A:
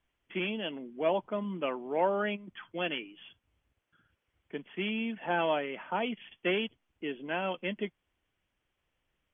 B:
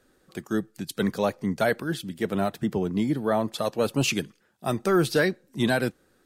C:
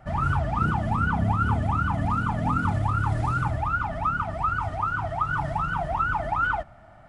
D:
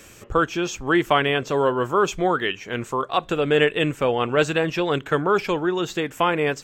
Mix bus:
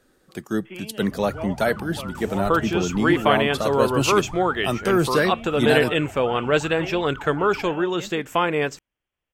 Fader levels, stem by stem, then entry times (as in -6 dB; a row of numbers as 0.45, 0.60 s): -5.0, +2.0, -12.5, -0.5 dB; 0.35, 0.00, 1.05, 2.15 s